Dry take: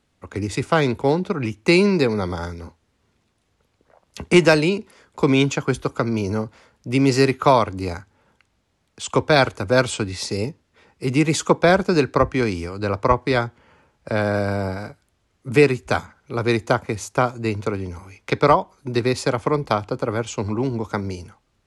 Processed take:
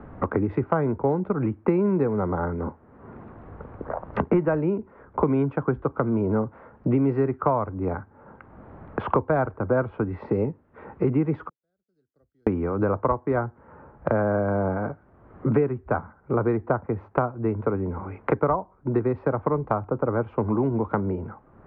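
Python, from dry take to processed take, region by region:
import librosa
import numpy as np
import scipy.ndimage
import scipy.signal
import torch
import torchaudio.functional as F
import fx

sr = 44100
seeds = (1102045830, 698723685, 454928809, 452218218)

y = fx.chain(x, sr, fx.law_mismatch(coded='A'),
    fx.cheby2_highpass(hz=2600.0, order=4, stop_db=70), at=(11.49, 12.47))
y = scipy.signal.sosfilt(scipy.signal.cheby2(4, 80, 7500.0, 'lowpass', fs=sr, output='sos'), y)
y = fx.band_squash(y, sr, depth_pct=100)
y = y * librosa.db_to_amplitude(-3.5)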